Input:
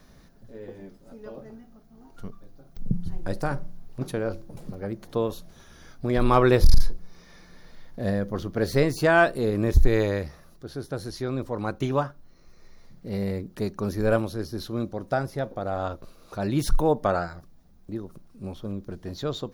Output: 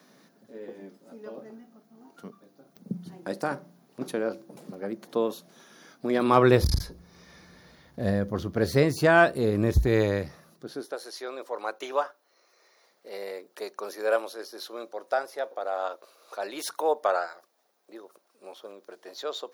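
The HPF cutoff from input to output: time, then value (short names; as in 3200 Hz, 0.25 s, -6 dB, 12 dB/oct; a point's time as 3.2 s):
HPF 24 dB/oct
6.21 s 200 Hz
6.71 s 56 Hz
9.79 s 56 Hz
10.68 s 160 Hz
10.98 s 460 Hz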